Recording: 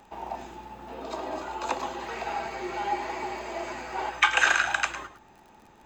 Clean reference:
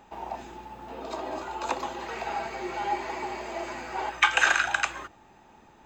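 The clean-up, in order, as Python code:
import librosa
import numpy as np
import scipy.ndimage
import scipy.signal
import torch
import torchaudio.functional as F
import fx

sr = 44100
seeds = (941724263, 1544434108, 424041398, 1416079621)

y = fx.fix_declick_ar(x, sr, threshold=6.5)
y = fx.fix_echo_inverse(y, sr, delay_ms=106, level_db=-12.5)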